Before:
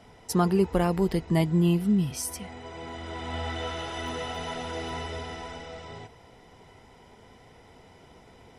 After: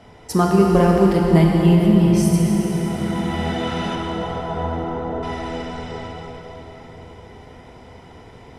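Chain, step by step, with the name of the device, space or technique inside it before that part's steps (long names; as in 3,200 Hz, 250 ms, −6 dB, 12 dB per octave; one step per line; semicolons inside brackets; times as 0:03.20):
0:03.95–0:05.23: low-pass filter 1,300 Hz 24 dB per octave
swimming-pool hall (convolution reverb RT60 4.8 s, pre-delay 20 ms, DRR −1 dB; high-shelf EQ 4,800 Hz −6.5 dB)
level +6 dB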